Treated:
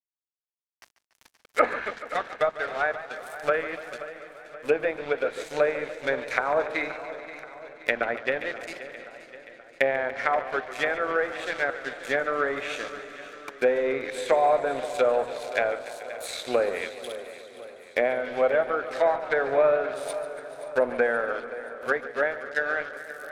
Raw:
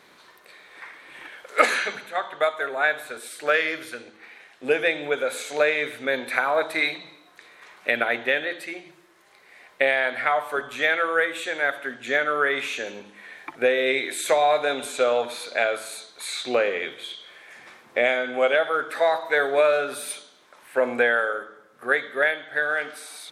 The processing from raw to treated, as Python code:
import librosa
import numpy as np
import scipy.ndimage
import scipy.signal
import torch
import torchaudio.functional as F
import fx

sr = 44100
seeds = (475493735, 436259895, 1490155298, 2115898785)

p1 = np.sign(x) * np.maximum(np.abs(x) - 10.0 ** (-34.5 / 20.0), 0.0)
p2 = fx.high_shelf(p1, sr, hz=8800.0, db=11.0)
p3 = fx.env_lowpass_down(p2, sr, base_hz=1200.0, full_db=-20.0)
p4 = p3 + fx.echo_feedback(p3, sr, ms=527, feedback_pct=56, wet_db=-15.0, dry=0)
y = fx.echo_warbled(p4, sr, ms=144, feedback_pct=78, rate_hz=2.8, cents=107, wet_db=-15.0)